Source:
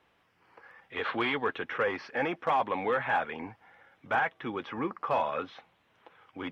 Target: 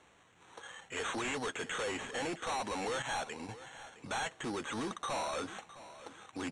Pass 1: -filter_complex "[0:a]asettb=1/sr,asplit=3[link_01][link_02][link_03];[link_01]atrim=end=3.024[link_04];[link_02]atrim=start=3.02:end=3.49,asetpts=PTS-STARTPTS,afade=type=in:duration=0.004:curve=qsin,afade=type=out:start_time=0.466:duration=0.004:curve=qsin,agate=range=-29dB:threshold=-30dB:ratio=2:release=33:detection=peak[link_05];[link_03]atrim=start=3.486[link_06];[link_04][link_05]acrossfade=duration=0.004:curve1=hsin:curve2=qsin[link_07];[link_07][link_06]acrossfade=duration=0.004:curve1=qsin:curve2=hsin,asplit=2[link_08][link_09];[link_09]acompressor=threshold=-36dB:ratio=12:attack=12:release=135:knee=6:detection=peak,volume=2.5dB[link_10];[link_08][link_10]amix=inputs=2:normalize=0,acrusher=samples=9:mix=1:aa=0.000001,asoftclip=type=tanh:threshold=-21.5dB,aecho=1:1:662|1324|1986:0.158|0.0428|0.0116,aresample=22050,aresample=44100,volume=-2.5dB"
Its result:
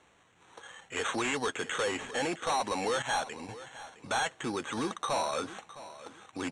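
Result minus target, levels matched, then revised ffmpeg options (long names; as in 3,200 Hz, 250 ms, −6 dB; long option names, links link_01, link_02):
soft clipping: distortion −8 dB
-filter_complex "[0:a]asettb=1/sr,asplit=3[link_01][link_02][link_03];[link_01]atrim=end=3.024[link_04];[link_02]atrim=start=3.02:end=3.49,asetpts=PTS-STARTPTS,afade=type=in:duration=0.004:curve=qsin,afade=type=out:start_time=0.466:duration=0.004:curve=qsin,agate=range=-29dB:threshold=-30dB:ratio=2:release=33:detection=peak[link_05];[link_03]atrim=start=3.486[link_06];[link_04][link_05]acrossfade=duration=0.004:curve1=hsin:curve2=qsin[link_07];[link_07][link_06]acrossfade=duration=0.004:curve1=qsin:curve2=hsin,asplit=2[link_08][link_09];[link_09]acompressor=threshold=-36dB:ratio=12:attack=12:release=135:knee=6:detection=peak,volume=2.5dB[link_10];[link_08][link_10]amix=inputs=2:normalize=0,acrusher=samples=9:mix=1:aa=0.000001,asoftclip=type=tanh:threshold=-31dB,aecho=1:1:662|1324|1986:0.158|0.0428|0.0116,aresample=22050,aresample=44100,volume=-2.5dB"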